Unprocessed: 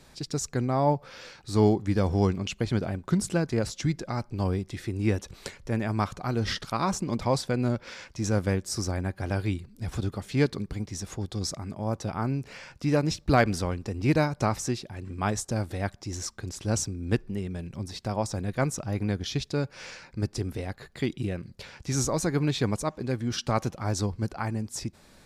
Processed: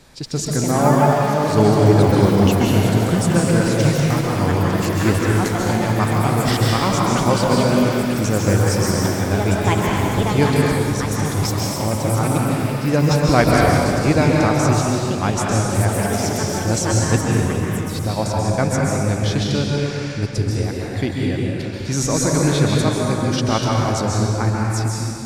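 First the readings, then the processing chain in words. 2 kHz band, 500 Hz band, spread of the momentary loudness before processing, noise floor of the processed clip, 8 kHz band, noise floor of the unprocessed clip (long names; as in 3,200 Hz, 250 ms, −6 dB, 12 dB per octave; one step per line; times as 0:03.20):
+12.0 dB, +11.0 dB, 10 LU, −25 dBFS, +11.0 dB, −56 dBFS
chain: delay with pitch and tempo change per echo 243 ms, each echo +6 semitones, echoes 3, each echo −6 dB
dense smooth reverb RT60 2.4 s, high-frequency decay 0.8×, pre-delay 120 ms, DRR −3 dB
level +5.5 dB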